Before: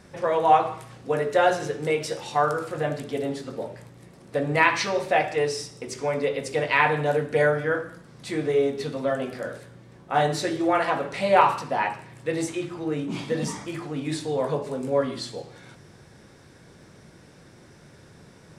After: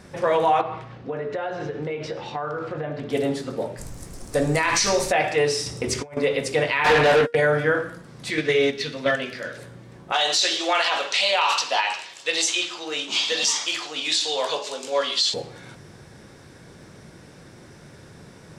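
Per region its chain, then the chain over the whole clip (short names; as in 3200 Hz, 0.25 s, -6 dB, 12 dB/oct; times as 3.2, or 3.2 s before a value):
0.61–3.1 air absorption 210 m + compressor, threshold -30 dBFS
3.77–5.11 resonant high shelf 4400 Hz +11.5 dB, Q 1.5 + added noise brown -42 dBFS
5.66–6.17 bell 79 Hz +14 dB 0.7 oct + negative-ratio compressor -33 dBFS, ratio -0.5
6.84–7.35 gate -30 dBFS, range -39 dB + resonator 470 Hz, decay 0.21 s, mix 50% + overdrive pedal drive 28 dB, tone 3100 Hz, clips at -14.5 dBFS
8.3–9.58 gate -26 dBFS, range -7 dB + band shelf 3200 Hz +10 dB 2.3 oct + notch 750 Hz
10.12–15.34 HPF 670 Hz + band shelf 4500 Hz +13 dB
whole clip: dynamic EQ 3000 Hz, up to +4 dB, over -40 dBFS, Q 0.77; limiter -15.5 dBFS; gain +4.5 dB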